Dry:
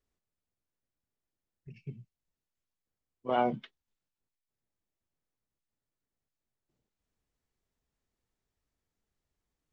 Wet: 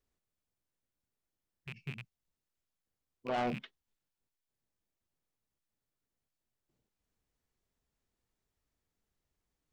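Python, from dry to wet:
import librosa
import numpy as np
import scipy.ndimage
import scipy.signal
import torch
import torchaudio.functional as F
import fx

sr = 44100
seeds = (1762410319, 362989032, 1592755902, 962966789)

y = fx.rattle_buzz(x, sr, strikes_db=-46.0, level_db=-32.0)
y = 10.0 ** (-28.0 / 20.0) * np.tanh(y / 10.0 ** (-28.0 / 20.0))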